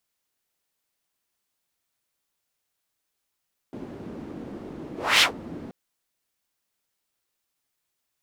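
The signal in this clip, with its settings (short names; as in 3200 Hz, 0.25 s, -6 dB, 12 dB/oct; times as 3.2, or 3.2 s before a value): whoosh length 1.98 s, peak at 1.48, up 0.28 s, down 0.13 s, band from 280 Hz, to 3100 Hz, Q 1.8, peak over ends 22 dB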